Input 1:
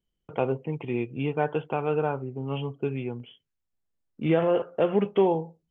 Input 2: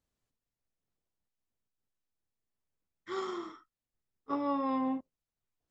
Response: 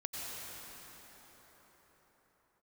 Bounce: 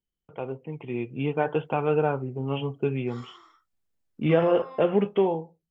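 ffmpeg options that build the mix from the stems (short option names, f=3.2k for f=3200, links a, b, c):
-filter_complex "[0:a]volume=-4dB[a];[1:a]highpass=850,volume=-13dB[b];[a][b]amix=inputs=2:normalize=0,dynaudnorm=f=420:g=5:m=11dB,flanger=delay=0.4:depth=4.9:regen=-77:speed=0.5:shape=sinusoidal"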